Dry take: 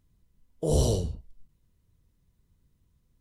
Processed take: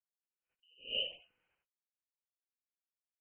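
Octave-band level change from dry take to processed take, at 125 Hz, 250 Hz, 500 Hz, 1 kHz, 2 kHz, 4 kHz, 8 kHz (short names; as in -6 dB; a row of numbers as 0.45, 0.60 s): under -40 dB, -33.0 dB, -21.5 dB, under -25 dB, n/a, +4.5 dB, under -40 dB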